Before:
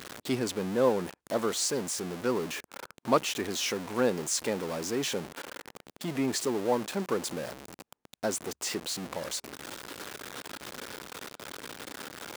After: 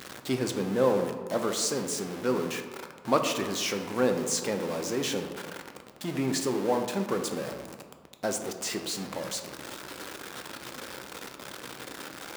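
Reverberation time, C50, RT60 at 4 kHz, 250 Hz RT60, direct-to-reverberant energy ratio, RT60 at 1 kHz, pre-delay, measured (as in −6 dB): 1.6 s, 7.5 dB, 0.80 s, 1.7 s, 5.0 dB, 1.7 s, 4 ms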